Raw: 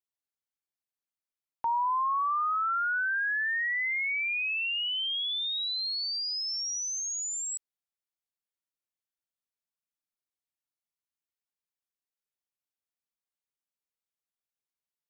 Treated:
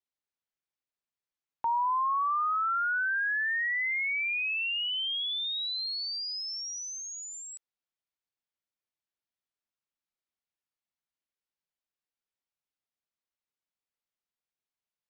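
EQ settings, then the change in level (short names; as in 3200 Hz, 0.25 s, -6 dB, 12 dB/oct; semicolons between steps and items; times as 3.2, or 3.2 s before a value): LPF 5000 Hz; 0.0 dB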